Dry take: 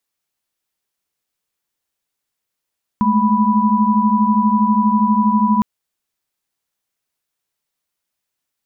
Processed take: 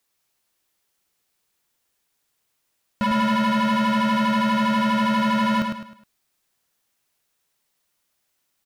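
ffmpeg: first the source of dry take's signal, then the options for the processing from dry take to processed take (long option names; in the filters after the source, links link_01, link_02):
-f lavfi -i "aevalsrc='0.158*(sin(2*PI*207.65*t)+sin(2*PI*220*t)+sin(2*PI*987.77*t))':duration=2.61:sample_rate=44100"
-filter_complex "[0:a]asplit=2[link_01][link_02];[link_02]alimiter=limit=-17.5dB:level=0:latency=1,volume=-1.5dB[link_03];[link_01][link_03]amix=inputs=2:normalize=0,asoftclip=type=hard:threshold=-20dB,aecho=1:1:104|208|312|416:0.562|0.202|0.0729|0.0262"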